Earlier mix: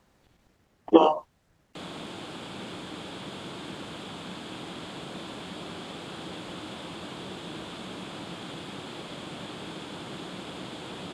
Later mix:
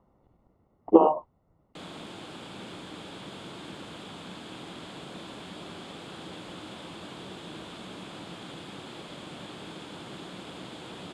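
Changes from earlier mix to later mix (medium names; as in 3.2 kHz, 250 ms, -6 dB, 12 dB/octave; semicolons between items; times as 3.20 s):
speech: add Savitzky-Golay filter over 65 samples; background -3.0 dB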